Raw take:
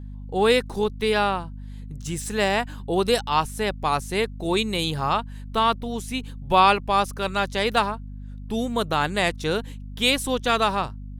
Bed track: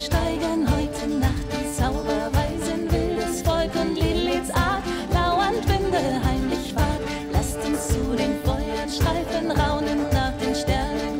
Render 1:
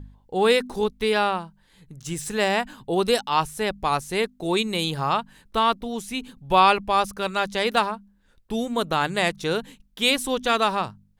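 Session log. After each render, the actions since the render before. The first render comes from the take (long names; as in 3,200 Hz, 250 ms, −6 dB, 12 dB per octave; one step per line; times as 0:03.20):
hum removal 50 Hz, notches 5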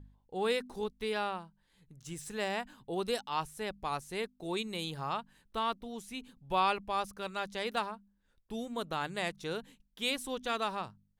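level −12.5 dB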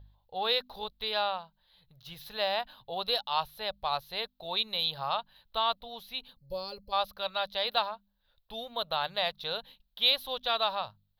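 0:06.37–0:06.92: gain on a spectral selection 570–4,100 Hz −22 dB
drawn EQ curve 100 Hz 0 dB, 340 Hz −16 dB, 590 Hz +7 dB, 2,200 Hz −1 dB, 4,000 Hz +14 dB, 8,400 Hz −29 dB, 12,000 Hz +7 dB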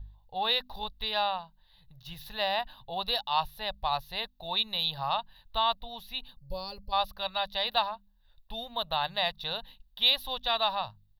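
low-shelf EQ 74 Hz +11.5 dB
comb filter 1.1 ms, depth 43%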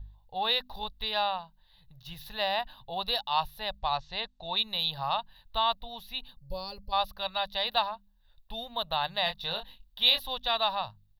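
0:03.79–0:04.56: Butterworth low-pass 7,900 Hz 72 dB per octave
0:09.24–0:10.20: double-tracking delay 24 ms −6 dB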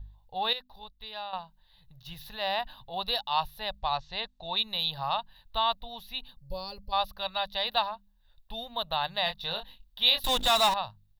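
0:00.53–0:01.33: clip gain −10 dB
0:02.24–0:02.94: transient designer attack −5 dB, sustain +2 dB
0:10.24–0:10.74: power curve on the samples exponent 0.5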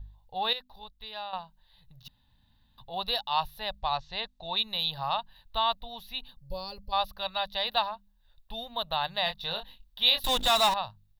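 0:02.08–0:02.78: fill with room tone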